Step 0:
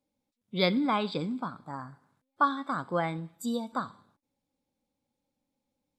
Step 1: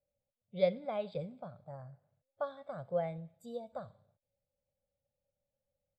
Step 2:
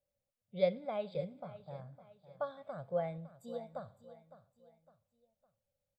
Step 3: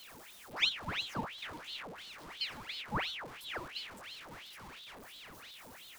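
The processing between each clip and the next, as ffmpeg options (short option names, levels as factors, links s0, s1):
-af "firequalizer=gain_entry='entry(120,0);entry(280,-25);entry(580,4);entry(970,-22);entry(2300,-14);entry(5300,-22)':delay=0.05:min_phase=1"
-af "aecho=1:1:558|1116|1674:0.178|0.0676|0.0257,volume=0.891"
-af "aeval=exprs='val(0)+0.5*0.00668*sgn(val(0))':c=same,aeval=exprs='val(0)*sin(2*PI*2000*n/s+2000*0.85/2.9*sin(2*PI*2.9*n/s))':c=same,volume=1.12"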